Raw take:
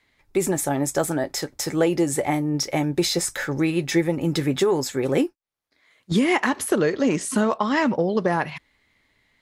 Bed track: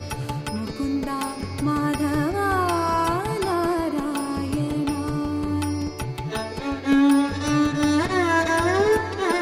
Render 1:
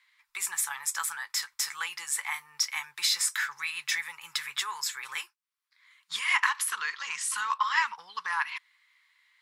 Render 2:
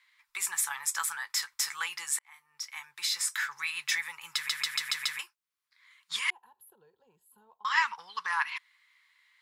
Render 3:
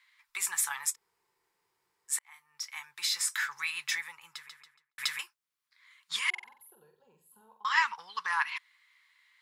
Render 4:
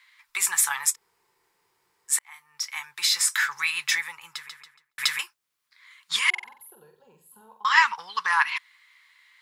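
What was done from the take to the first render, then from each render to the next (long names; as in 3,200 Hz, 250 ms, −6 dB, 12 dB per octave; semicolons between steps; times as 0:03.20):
elliptic high-pass filter 1,000 Hz, stop band 40 dB; notch filter 6,400 Hz, Q 22
0:02.19–0:03.69: fade in; 0:04.35: stutter in place 0.14 s, 6 plays; 0:06.30–0:07.65: inverse Chebyshev band-stop filter 1,100–9,700 Hz
0:00.93–0:02.11: fill with room tone, crossfade 0.06 s; 0:03.64–0:04.98: fade out and dull; 0:06.29–0:07.69: flutter between parallel walls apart 7.9 metres, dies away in 0.42 s
level +8 dB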